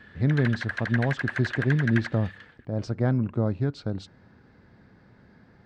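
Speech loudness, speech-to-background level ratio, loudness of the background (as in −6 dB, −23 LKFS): −27.0 LKFS, 6.0 dB, −33.0 LKFS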